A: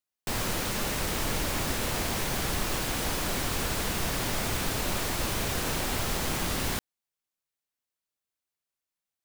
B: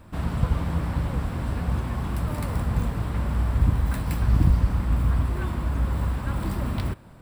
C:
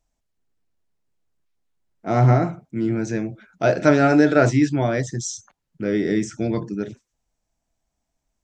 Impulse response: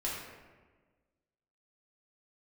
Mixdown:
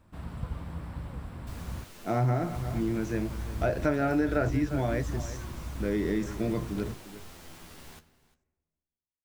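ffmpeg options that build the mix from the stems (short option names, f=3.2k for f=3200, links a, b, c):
-filter_complex "[0:a]flanger=delay=9.5:depth=3.6:regen=36:speed=0.37:shape=triangular,adelay=1200,volume=-16.5dB,asplit=3[a][b][c];[b]volume=-16dB[d];[c]volume=-18.5dB[e];[1:a]volume=-12.5dB,asplit=3[f][g][h];[f]atrim=end=1.84,asetpts=PTS-STARTPTS,afade=t=out:st=1.836:d=0.004:c=hsin[i];[g]atrim=start=1.84:end=2.53,asetpts=PTS-STARTPTS,volume=0[j];[h]atrim=start=2.53,asetpts=PTS-STARTPTS,afade=t=in:d=0.004:c=hsin[k];[i][j][k]concat=n=3:v=0:a=1[l];[2:a]acrossover=split=2700[m][n];[n]acompressor=threshold=-40dB:ratio=4:attack=1:release=60[o];[m][o]amix=inputs=2:normalize=0,volume=-6dB,asplit=2[p][q];[q]volume=-15dB[r];[3:a]atrim=start_sample=2205[s];[d][s]afir=irnorm=-1:irlink=0[t];[e][r]amix=inputs=2:normalize=0,aecho=0:1:351:1[u];[a][l][p][t][u]amix=inputs=5:normalize=0,acompressor=threshold=-24dB:ratio=3"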